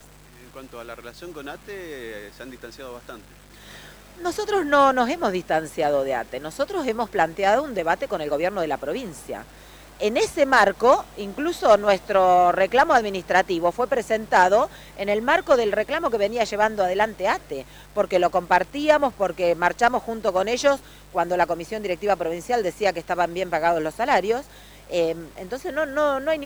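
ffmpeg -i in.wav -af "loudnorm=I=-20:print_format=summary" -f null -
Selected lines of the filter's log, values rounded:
Input Integrated:    -22.0 LUFS
Input True Peak:      -3.9 dBTP
Input LRA:             5.4 LU
Input Threshold:     -33.0 LUFS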